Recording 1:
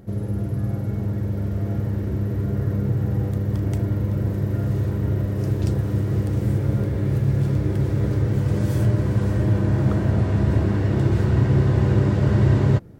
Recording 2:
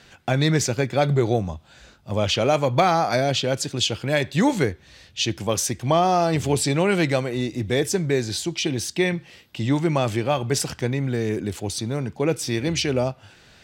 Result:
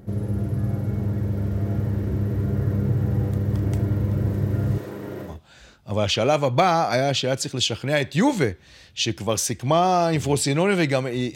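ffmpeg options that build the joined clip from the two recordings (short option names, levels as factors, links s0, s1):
-filter_complex "[0:a]asettb=1/sr,asplit=3[s0][s1][s2];[s0]atrim=end=4.784[s3];[s1]atrim=start=4.78:end=5.4,asetpts=PTS-STARTPTS,afade=t=in:d=0.004:c=qsin,afade=t=out:st=0.616:d=0.004:c=qsin,highpass=320[s4];[s2]atrim=start=5.396[s5];[s3][s4]acrossfade=d=0.004:c1=hsin:c2=qsin[s6];[s6][s5]acrossfade=d=0.004:c1=qsin:c2=hsin,apad=whole_dur=11.35,atrim=end=11.35,atrim=end=5.4,asetpts=PTS-STARTPTS[s7];[1:a]atrim=start=1.42:end=7.55,asetpts=PTS-STARTPTS[s8];[s7][s8]acrossfade=d=0.18:c1=tri:c2=tri"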